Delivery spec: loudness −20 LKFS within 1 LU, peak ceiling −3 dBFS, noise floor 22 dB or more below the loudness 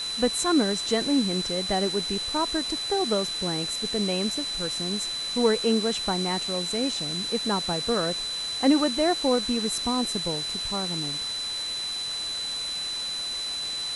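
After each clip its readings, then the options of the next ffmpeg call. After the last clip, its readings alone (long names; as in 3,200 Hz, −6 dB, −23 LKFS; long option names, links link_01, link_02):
interfering tone 4,000 Hz; level of the tone −29 dBFS; background noise floor −32 dBFS; target noise floor −48 dBFS; integrated loudness −25.5 LKFS; sample peak −9.0 dBFS; target loudness −20.0 LKFS
→ -af "bandreject=frequency=4000:width=30"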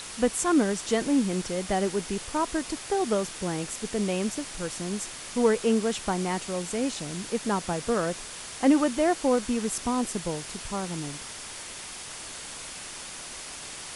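interfering tone none found; background noise floor −40 dBFS; target noise floor −51 dBFS
→ -af "afftdn=noise_reduction=11:noise_floor=-40"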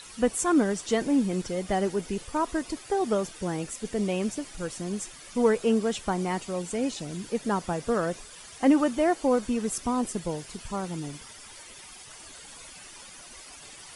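background noise floor −47 dBFS; target noise floor −50 dBFS
→ -af "afftdn=noise_reduction=6:noise_floor=-47"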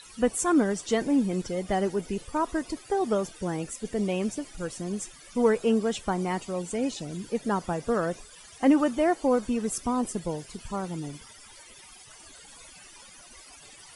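background noise floor −50 dBFS; integrated loudness −28.0 LKFS; sample peak −10.0 dBFS; target loudness −20.0 LKFS
→ -af "volume=8dB,alimiter=limit=-3dB:level=0:latency=1"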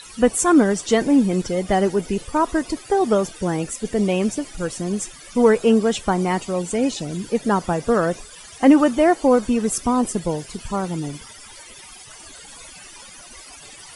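integrated loudness −20.0 LKFS; sample peak −3.0 dBFS; background noise floor −42 dBFS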